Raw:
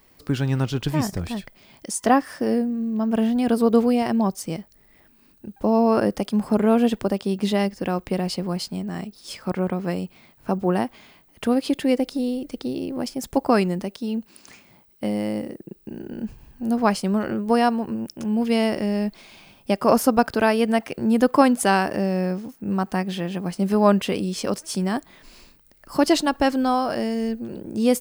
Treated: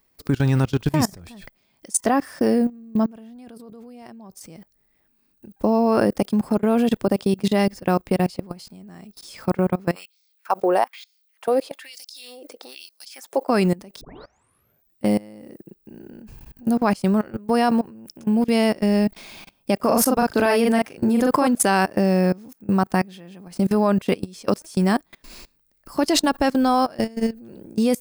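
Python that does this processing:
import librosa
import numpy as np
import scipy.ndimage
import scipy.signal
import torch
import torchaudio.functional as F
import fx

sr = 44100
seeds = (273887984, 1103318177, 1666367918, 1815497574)

y = fx.level_steps(x, sr, step_db=13, at=(3.06, 4.41))
y = fx.auto_swell(y, sr, attack_ms=184.0, at=(6.57, 7.43), fade=0.02)
y = fx.filter_lfo_highpass(y, sr, shape='sine', hz=1.1, low_hz=440.0, high_hz=5500.0, q=2.6, at=(9.94, 13.48), fade=0.02)
y = fx.doubler(y, sr, ms=39.0, db=-4.0, at=(19.76, 21.47))
y = fx.edit(y, sr, fx.tape_start(start_s=14.01, length_s=1.04), tone=tone)
y = fx.high_shelf(y, sr, hz=7300.0, db=4.5)
y = fx.notch(y, sr, hz=3000.0, q=23.0)
y = fx.level_steps(y, sr, step_db=24)
y = F.gain(torch.from_numpy(y), 6.5).numpy()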